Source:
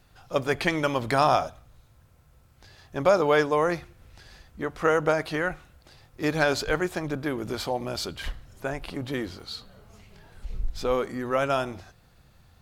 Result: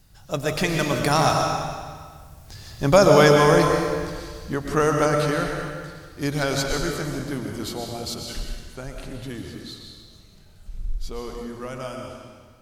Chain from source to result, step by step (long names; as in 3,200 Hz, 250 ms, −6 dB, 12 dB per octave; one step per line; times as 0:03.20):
source passing by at 0:03.07, 21 m/s, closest 29 metres
bass and treble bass +9 dB, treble +11 dB
mains-hum notches 60/120 Hz
comb and all-pass reverb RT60 1.7 s, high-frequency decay 0.95×, pre-delay 80 ms, DRR 1.5 dB
level +4.5 dB